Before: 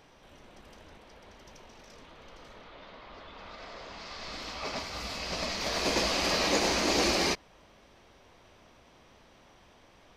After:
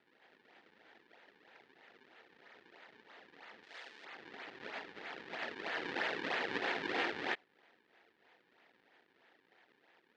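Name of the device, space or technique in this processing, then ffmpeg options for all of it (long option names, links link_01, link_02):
circuit-bent sampling toy: -filter_complex "[0:a]acrusher=samples=38:mix=1:aa=0.000001:lfo=1:lforange=60.8:lforate=3.1,highpass=490,equalizer=frequency=590:width_type=q:width=4:gain=-8,equalizer=frequency=1100:width_type=q:width=4:gain=-9,equalizer=frequency=1800:width_type=q:width=4:gain=7,lowpass=frequency=4100:width=0.5412,lowpass=frequency=4100:width=1.3066,asettb=1/sr,asplit=3[link_01][link_02][link_03];[link_01]atrim=end=3.634[link_04];[link_02]atrim=start=3.63:end=4.05,asetpts=PTS-STARTPTS,afade=type=in:duration=0.004:curve=qsin,afade=type=out:start_time=0.416:duration=0.004:curve=qsin,aemphasis=mode=production:type=riaa[link_05];[link_03]atrim=start=4.046[link_06];[link_04][link_05]acrossfade=duration=0.004:curve1=hsin:curve2=qsin[link_07];[link_07][link_06]acrossfade=duration=0.004:curve1=qsin:curve2=hsin,volume=-4.5dB"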